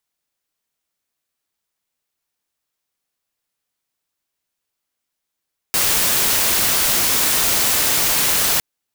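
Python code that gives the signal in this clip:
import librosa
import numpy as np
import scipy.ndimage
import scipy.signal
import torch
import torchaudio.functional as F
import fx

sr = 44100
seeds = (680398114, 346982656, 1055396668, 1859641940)

y = fx.noise_colour(sr, seeds[0], length_s=2.86, colour='white', level_db=-17.0)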